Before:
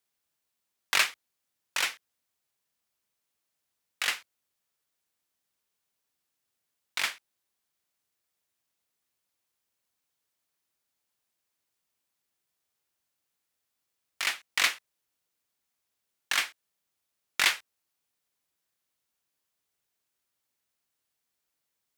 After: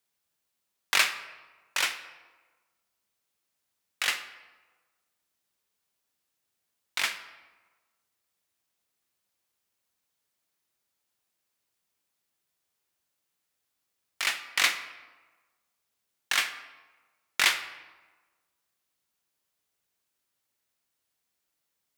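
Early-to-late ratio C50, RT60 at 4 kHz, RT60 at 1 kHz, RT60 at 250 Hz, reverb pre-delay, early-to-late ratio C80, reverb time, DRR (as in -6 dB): 11.0 dB, 0.80 s, 1.3 s, 1.3 s, 5 ms, 13.0 dB, 1.3 s, 9.0 dB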